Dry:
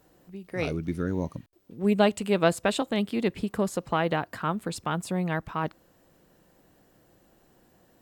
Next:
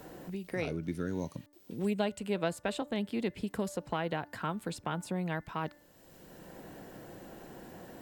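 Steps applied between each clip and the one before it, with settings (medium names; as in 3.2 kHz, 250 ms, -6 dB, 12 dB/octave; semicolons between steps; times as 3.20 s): band-stop 1.2 kHz, Q 11; de-hum 293.4 Hz, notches 7; three bands compressed up and down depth 70%; trim -7 dB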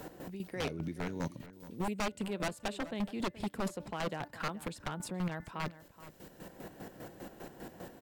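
square tremolo 5 Hz, depth 65%, duty 40%; wavefolder -31 dBFS; echo from a far wall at 73 m, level -15 dB; trim +3.5 dB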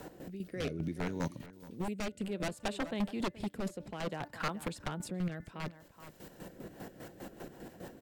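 rotary cabinet horn 0.6 Hz, later 6.3 Hz, at 6.32 s; trim +2 dB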